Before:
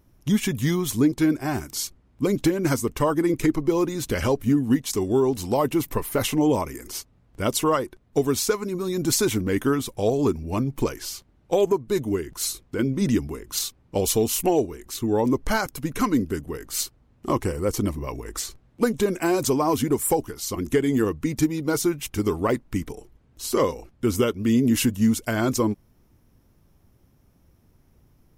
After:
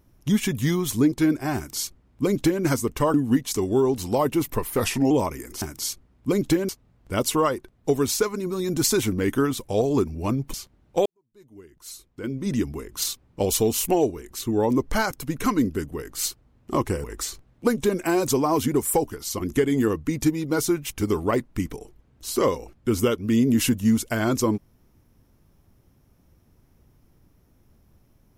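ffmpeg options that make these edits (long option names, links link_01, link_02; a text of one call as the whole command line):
ffmpeg -i in.wav -filter_complex "[0:a]asplit=9[link_01][link_02][link_03][link_04][link_05][link_06][link_07][link_08][link_09];[link_01]atrim=end=3.142[link_10];[link_02]atrim=start=4.528:end=6.164[link_11];[link_03]atrim=start=6.16:end=6.46,asetpts=PTS-STARTPTS,asetrate=39249,aresample=44100,atrim=end_sample=14865,asetpts=PTS-STARTPTS[link_12];[link_04]atrim=start=6.456:end=6.972[link_13];[link_05]atrim=start=1.558:end=2.632[link_14];[link_06]atrim=start=6.968:end=10.822[link_15];[link_07]atrim=start=11.088:end=11.61,asetpts=PTS-STARTPTS,afade=type=out:start_time=0.518:duration=0.004:curve=hsin[link_16];[link_08]atrim=start=11.61:end=17.592,asetpts=PTS-STARTPTS,afade=type=in:duration=1.78:curve=qua[link_17];[link_09]atrim=start=18.198[link_18];[link_10][link_11]acrossfade=duration=0.004:curve1=hsin:curve2=hsin[link_19];[link_19][link_12]acrossfade=duration=0.004:curve1=hsin:curve2=hsin[link_20];[link_20][link_13]acrossfade=duration=0.004:curve1=hsin:curve2=hsin[link_21];[link_21][link_14]acrossfade=duration=0.004:curve1=hsin:curve2=hsin[link_22];[link_22][link_15]acrossfade=duration=0.004:curve1=hsin:curve2=hsin[link_23];[link_16][link_17]concat=n=2:v=0:a=1[link_24];[link_23][link_24]acrossfade=duration=0.004:curve1=hsin:curve2=hsin[link_25];[link_25][link_18]acrossfade=duration=0.004:curve1=hsin:curve2=hsin" out.wav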